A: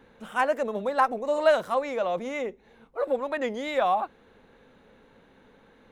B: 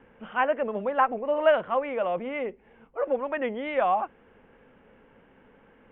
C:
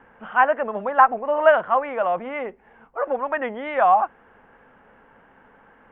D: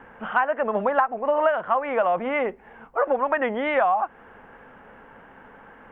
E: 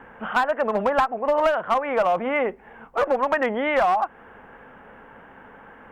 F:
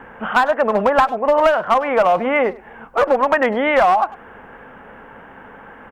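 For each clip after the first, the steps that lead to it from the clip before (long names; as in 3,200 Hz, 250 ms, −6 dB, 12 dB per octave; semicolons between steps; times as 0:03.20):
Butterworth low-pass 3,200 Hz 96 dB per octave
flat-topped bell 1,100 Hz +8.5 dB
downward compressor 12 to 1, threshold −23 dBFS, peak gain reduction 15 dB; level +5.5 dB
asymmetric clip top −18 dBFS; level +1.5 dB
far-end echo of a speakerphone 100 ms, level −19 dB; level +6 dB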